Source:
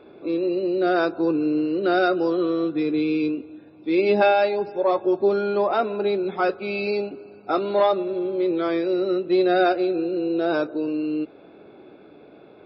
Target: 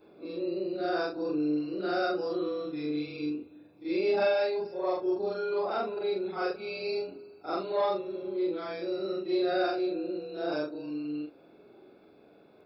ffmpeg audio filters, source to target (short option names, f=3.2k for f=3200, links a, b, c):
-af "afftfilt=real='re':imag='-im':win_size=4096:overlap=0.75,aexciter=amount=3.5:drive=5.6:freq=4.6k,volume=-5dB"